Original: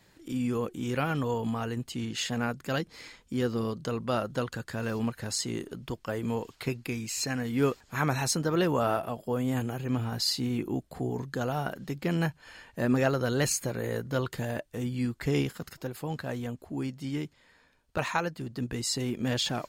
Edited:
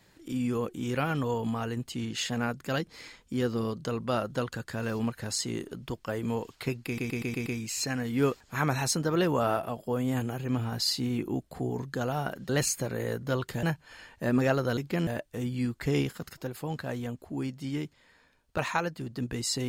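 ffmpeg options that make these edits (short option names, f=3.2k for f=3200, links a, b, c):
-filter_complex "[0:a]asplit=10[a][b][c][d][e][f][g][h][i][j];[a]atrim=end=6.982[k];[b]atrim=start=6.858:end=6.982[l];[c]atrim=start=6.858:end=6.982[m];[d]atrim=start=6.858:end=6.982[n];[e]atrim=start=6.858:end=6.982[o];[f]atrim=start=6.858:end=11.892[p];[g]atrim=start=13.328:end=14.472[q];[h]atrim=start=12.188:end=13.332[r];[i]atrim=start=11.888:end=12.192[s];[j]atrim=start=14.468[t];[k][l]acrossfade=d=0.004:c1=hsin:c2=hsin[u];[u][m]acrossfade=d=0.004:c1=hsin:c2=hsin[v];[v][n]acrossfade=d=0.004:c1=hsin:c2=hsin[w];[w][o]acrossfade=d=0.004:c1=hsin:c2=hsin[x];[x][p]acrossfade=d=0.004:c1=hsin:c2=hsin[y];[y][q]acrossfade=d=0.004:c1=hsin:c2=hsin[z];[z][r]acrossfade=d=0.004:c1=hsin:c2=hsin[aa];[aa][s]acrossfade=d=0.004:c1=hsin:c2=hsin[ab];[ab][t]acrossfade=d=0.004:c1=hsin:c2=hsin"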